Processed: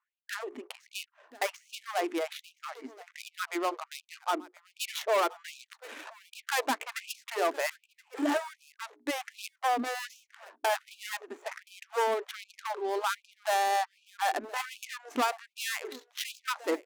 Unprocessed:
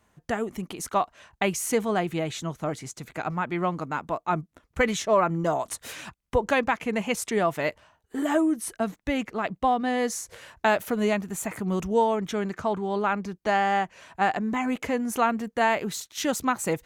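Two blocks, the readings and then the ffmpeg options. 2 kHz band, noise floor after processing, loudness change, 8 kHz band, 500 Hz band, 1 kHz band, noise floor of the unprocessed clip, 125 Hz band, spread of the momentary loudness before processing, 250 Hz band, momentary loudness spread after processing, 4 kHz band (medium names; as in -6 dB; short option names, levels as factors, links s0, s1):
-5.0 dB, -79 dBFS, -6.5 dB, -7.0 dB, -7.5 dB, -5.5 dB, -72 dBFS, under -35 dB, 9 LU, -12.0 dB, 16 LU, -0.5 dB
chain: -filter_complex "[0:a]highpass=f=140:w=0.5412,highpass=f=140:w=1.3066,bandreject=f=60:t=h:w=6,bandreject=f=120:t=h:w=6,bandreject=f=180:t=h:w=6,bandreject=f=240:t=h:w=6,bandreject=f=300:t=h:w=6,bandreject=f=360:t=h:w=6,bandreject=f=420:t=h:w=6,acrossover=split=5800[s0][s1];[s1]acompressor=threshold=0.00447:ratio=4:attack=1:release=60[s2];[s0][s2]amix=inputs=2:normalize=0,equalizer=f=250:t=o:w=0.41:g=9,adynamicsmooth=sensitivity=7:basefreq=820,volume=10,asoftclip=hard,volume=0.1,crystalizer=i=1.5:c=0,asplit=2[s3][s4];[s4]aecho=0:1:1024:0.0891[s5];[s3][s5]amix=inputs=2:normalize=0,afftfilt=real='re*gte(b*sr/1024,250*pow(2400/250,0.5+0.5*sin(2*PI*1.3*pts/sr)))':imag='im*gte(b*sr/1024,250*pow(2400/250,0.5+0.5*sin(2*PI*1.3*pts/sr)))':win_size=1024:overlap=0.75,volume=0.794"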